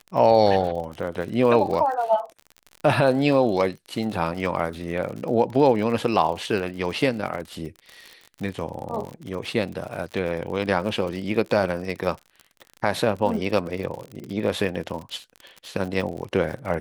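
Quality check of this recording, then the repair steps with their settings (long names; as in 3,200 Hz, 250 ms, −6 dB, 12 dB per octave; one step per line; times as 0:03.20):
surface crackle 51 per second −31 dBFS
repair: click removal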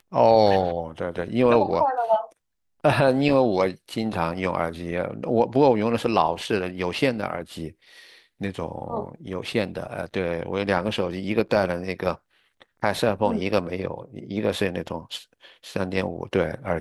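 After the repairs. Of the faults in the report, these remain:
none of them is left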